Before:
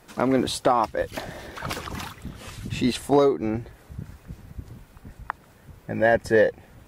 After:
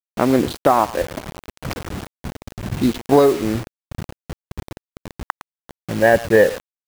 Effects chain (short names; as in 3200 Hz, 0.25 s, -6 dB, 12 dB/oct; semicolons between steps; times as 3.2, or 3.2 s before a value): Wiener smoothing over 41 samples; speakerphone echo 0.11 s, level -16 dB; requantised 6-bit, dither none; gain +6 dB